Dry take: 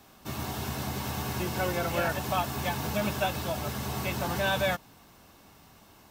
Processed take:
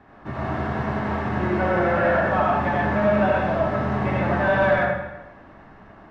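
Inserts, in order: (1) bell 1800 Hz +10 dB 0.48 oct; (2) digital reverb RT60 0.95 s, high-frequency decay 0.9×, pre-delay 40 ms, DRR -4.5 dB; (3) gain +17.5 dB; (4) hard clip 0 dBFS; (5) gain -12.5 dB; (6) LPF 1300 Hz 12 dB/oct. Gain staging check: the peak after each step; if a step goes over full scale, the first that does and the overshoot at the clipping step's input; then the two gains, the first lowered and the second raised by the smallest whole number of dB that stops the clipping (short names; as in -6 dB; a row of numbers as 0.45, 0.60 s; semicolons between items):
-13.0, -8.0, +9.5, 0.0, -12.5, -12.0 dBFS; step 3, 9.5 dB; step 3 +7.5 dB, step 5 -2.5 dB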